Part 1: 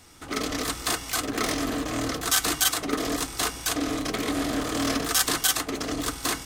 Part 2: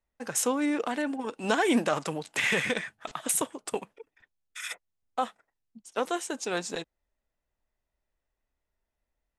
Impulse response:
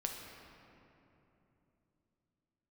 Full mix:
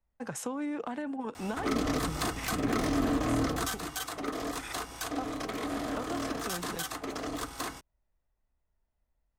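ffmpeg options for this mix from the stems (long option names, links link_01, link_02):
-filter_complex "[0:a]acontrast=48,adelay=1350,volume=-3.5dB,afade=type=out:start_time=3.62:duration=0.2:silence=0.281838[link_01];[1:a]bass=frequency=250:gain=14,treble=frequency=4000:gain=-1,acompressor=threshold=-27dB:ratio=4,volume=-8dB[link_02];[link_01][link_02]amix=inputs=2:normalize=0,equalizer=frequency=870:width=0.61:gain=8.5,acrossover=split=290[link_03][link_04];[link_04]acompressor=threshold=-34dB:ratio=4[link_05];[link_03][link_05]amix=inputs=2:normalize=0"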